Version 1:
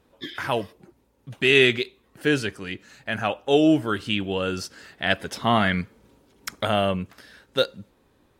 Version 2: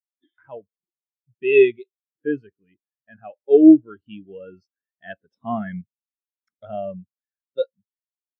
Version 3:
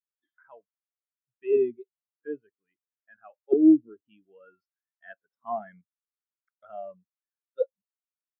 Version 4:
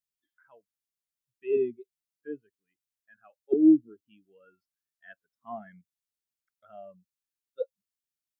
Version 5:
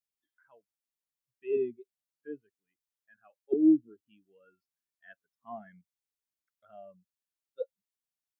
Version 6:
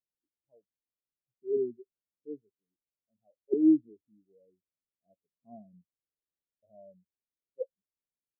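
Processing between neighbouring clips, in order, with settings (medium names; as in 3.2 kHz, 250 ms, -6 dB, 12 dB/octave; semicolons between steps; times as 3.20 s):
spectral contrast expander 2.5:1; trim +3 dB
auto-wah 230–1400 Hz, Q 2.8, down, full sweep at -11.5 dBFS; trim -1 dB
peaking EQ 800 Hz -12 dB 2.3 oct; trim +3.5 dB
band-stop 1.3 kHz, Q 26; trim -3.5 dB
steep low-pass 610 Hz 48 dB/octave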